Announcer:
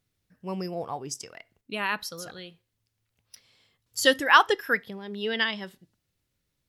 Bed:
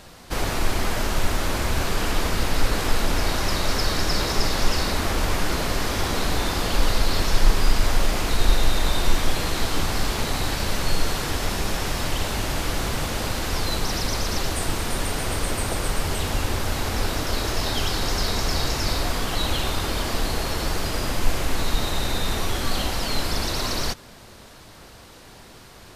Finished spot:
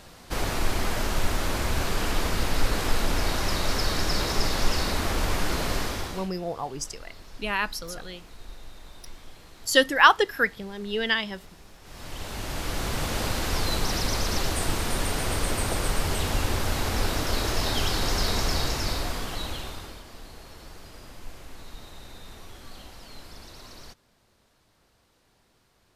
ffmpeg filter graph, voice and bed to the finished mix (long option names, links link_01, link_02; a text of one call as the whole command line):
ffmpeg -i stem1.wav -i stem2.wav -filter_complex "[0:a]adelay=5700,volume=1.5dB[link_01];[1:a]volume=20.5dB,afade=type=out:start_time=5.76:duration=0.54:silence=0.0794328,afade=type=in:start_time=11.82:duration=1.36:silence=0.0668344,afade=type=out:start_time=18.39:duration=1.64:silence=0.11885[link_02];[link_01][link_02]amix=inputs=2:normalize=0" out.wav